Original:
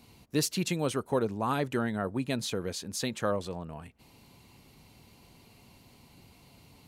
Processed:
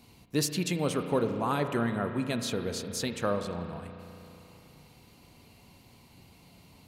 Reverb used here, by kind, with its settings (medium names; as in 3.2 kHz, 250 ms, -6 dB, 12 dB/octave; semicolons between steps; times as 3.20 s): spring tank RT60 3.1 s, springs 34 ms, chirp 50 ms, DRR 7 dB